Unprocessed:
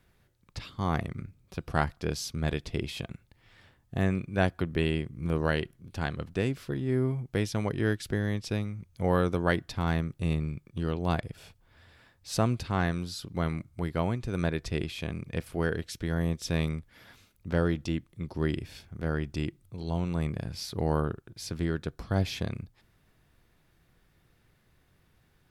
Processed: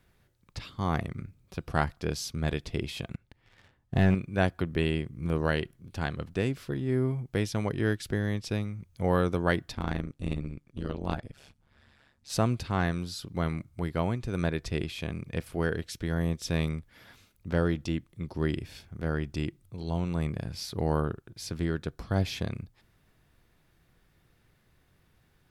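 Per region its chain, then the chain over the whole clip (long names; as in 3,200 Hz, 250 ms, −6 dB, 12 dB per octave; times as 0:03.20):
0:03.14–0:04.15: high-shelf EQ 6,100 Hz −10.5 dB + leveller curve on the samples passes 2
0:09.75–0:12.30: low-pass filter 11,000 Hz + amplitude modulation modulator 140 Hz, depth 85%
whole clip: no processing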